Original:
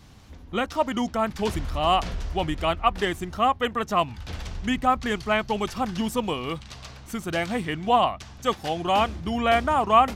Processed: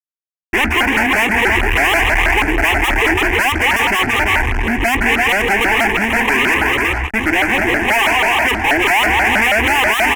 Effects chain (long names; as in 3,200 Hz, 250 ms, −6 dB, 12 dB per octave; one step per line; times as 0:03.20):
Savitzky-Golay smoothing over 15 samples
in parallel at −11 dB: dead-zone distortion −45 dBFS
on the sum: brickwall limiter −14.5 dBFS, peak gain reduction 10 dB
high shelf with overshoot 1,600 Hz −11 dB, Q 3
mains-hum notches 60/120/180/240/300/360 Hz
multi-tap delay 210/336/385 ms −10.5/−10.5/−15 dB
noise gate with hold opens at −32 dBFS
fuzz pedal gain 43 dB, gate −50 dBFS
flat-topped bell 2,100 Hz +10.5 dB 1 octave
phaser with its sweep stopped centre 840 Hz, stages 8
pitch modulation by a square or saw wave saw up 6.2 Hz, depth 250 cents